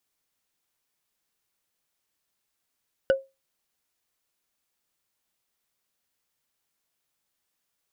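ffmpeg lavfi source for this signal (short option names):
-f lavfi -i "aevalsrc='0.211*pow(10,-3*t/0.23)*sin(2*PI*538*t)+0.0891*pow(10,-3*t/0.068)*sin(2*PI*1483.3*t)+0.0376*pow(10,-3*t/0.03)*sin(2*PI*2907.4*t)+0.0158*pow(10,-3*t/0.017)*sin(2*PI*4806*t)+0.00668*pow(10,-3*t/0.01)*sin(2*PI*7176.9*t)':d=0.45:s=44100"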